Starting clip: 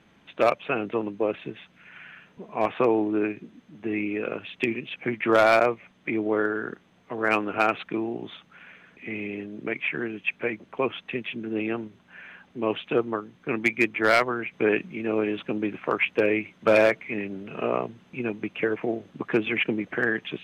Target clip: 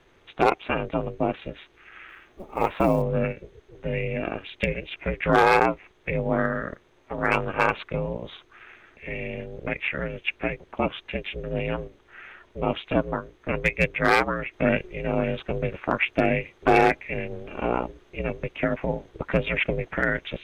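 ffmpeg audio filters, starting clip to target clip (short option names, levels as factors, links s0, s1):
-filter_complex "[0:a]asplit=3[s0][s1][s2];[s0]afade=t=out:st=2.08:d=0.02[s3];[s1]acrusher=bits=8:mode=log:mix=0:aa=0.000001,afade=t=in:st=2.08:d=0.02,afade=t=out:st=3.01:d=0.02[s4];[s2]afade=t=in:st=3.01:d=0.02[s5];[s3][s4][s5]amix=inputs=3:normalize=0,bandreject=f=2800:w=15,aeval=exprs='val(0)*sin(2*PI*180*n/s)':c=same,volume=1.5"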